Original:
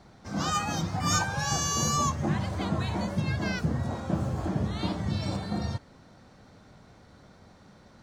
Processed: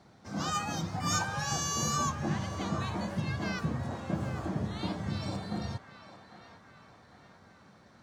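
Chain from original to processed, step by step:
high-pass filter 82 Hz
on a send: feedback echo with a band-pass in the loop 802 ms, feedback 62%, band-pass 1,500 Hz, level −9.5 dB
on the sum: level −4 dB

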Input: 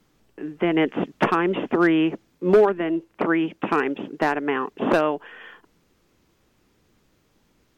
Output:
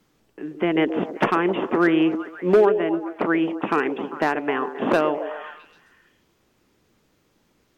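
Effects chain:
low-shelf EQ 80 Hz −6.5 dB
echo through a band-pass that steps 132 ms, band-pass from 410 Hz, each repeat 0.7 octaves, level −6.5 dB

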